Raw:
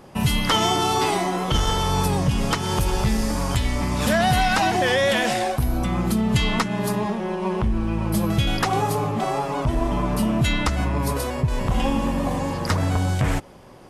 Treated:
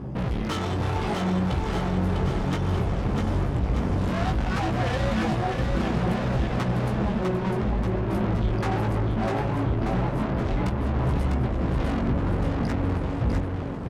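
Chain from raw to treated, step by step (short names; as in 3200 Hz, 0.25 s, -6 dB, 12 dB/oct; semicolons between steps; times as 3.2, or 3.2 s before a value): HPF 93 Hz 12 dB/oct; RIAA curve playback; reverb removal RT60 1.7 s; low shelf 250 Hz +11.5 dB; notches 50/100/150/200/250 Hz; limiter -2.5 dBFS, peak gain reduction 9.5 dB; phaser 0.17 Hz, delay 3.8 ms, feedback 27%; tube stage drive 26 dB, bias 0.45; chorus 0.62 Hz, delay 15 ms, depth 6.2 ms; bouncing-ball echo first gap 0.65 s, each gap 0.9×, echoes 5; gain +3.5 dB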